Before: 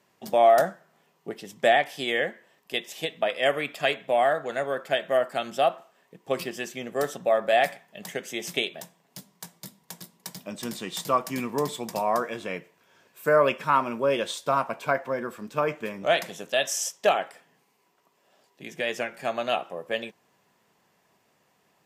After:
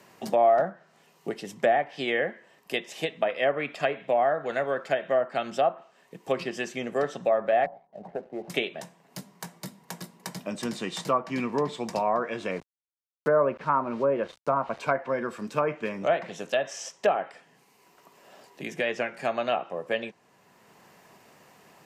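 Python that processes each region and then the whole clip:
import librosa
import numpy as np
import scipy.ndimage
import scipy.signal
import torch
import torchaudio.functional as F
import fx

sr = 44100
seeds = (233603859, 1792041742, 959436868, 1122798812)

y = fx.chain(x, sr, fx.ladder_lowpass(hz=870.0, resonance_pct=55),
    fx.leveller(passes=1), at=(7.66, 8.5))
y = fx.chain(y, sr, fx.lowpass(hz=1500.0, slope=12),
    fx.sample_gate(floor_db=-44.0), at=(12.51, 14.79))
y = fx.notch(y, sr, hz=3400.0, q=17.0)
y = fx.env_lowpass_down(y, sr, base_hz=1400.0, full_db=-19.5)
y = fx.band_squash(y, sr, depth_pct=40)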